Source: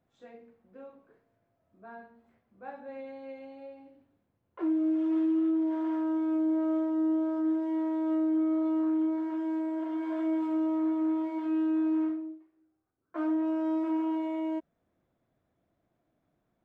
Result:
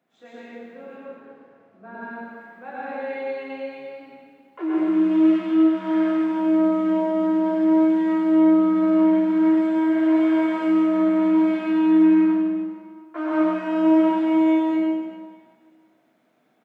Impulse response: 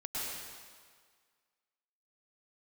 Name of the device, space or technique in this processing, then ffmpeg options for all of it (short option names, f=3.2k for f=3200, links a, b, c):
PA in a hall: -filter_complex "[0:a]asettb=1/sr,asplit=3[a][b][c];[a]atrim=end=0.854[d];[b]atrim=start=0.85:end=1.95,asetpts=PTS-STARTPTS,afade=t=in:d=0.004:c=qsin,afade=t=out:st=1.096:d=0.004:c=qsin,aemphasis=mode=reproduction:type=bsi[e];[c]atrim=start=1.946[f];[d][e]acrossfade=d=0.004:c1=hsin:c2=qsin[g];[g][f]acrossfade=d=0.004:c1=qsin:c2=hsin,asplit=6[h][i][j][k][l][m];[i]adelay=134,afreqshift=-130,volume=-22dB[n];[j]adelay=268,afreqshift=-260,volume=-26.3dB[o];[k]adelay=402,afreqshift=-390,volume=-30.6dB[p];[l]adelay=536,afreqshift=-520,volume=-34.9dB[q];[m]adelay=670,afreqshift=-650,volume=-39.2dB[r];[h][n][o][p][q][r]amix=inputs=6:normalize=0,highpass=f=180:w=0.5412,highpass=f=180:w=1.3066,equalizer=f=2.4k:t=o:w=1.7:g=6,aecho=1:1:98:0.422[s];[1:a]atrim=start_sample=2205[t];[s][t]afir=irnorm=-1:irlink=0,volume=8dB"